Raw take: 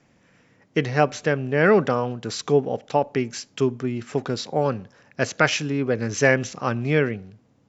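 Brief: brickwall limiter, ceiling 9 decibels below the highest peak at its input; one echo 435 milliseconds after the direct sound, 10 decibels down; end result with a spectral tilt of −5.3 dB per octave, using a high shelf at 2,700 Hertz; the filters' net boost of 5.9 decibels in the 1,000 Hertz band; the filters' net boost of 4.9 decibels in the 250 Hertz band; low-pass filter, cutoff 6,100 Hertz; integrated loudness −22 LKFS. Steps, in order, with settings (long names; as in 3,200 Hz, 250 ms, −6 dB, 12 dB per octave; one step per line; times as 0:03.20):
low-pass filter 6,100 Hz
parametric band 250 Hz +5.5 dB
parametric band 1,000 Hz +7 dB
high-shelf EQ 2,700 Hz +5.5 dB
brickwall limiter −6 dBFS
single-tap delay 435 ms −10 dB
level −0.5 dB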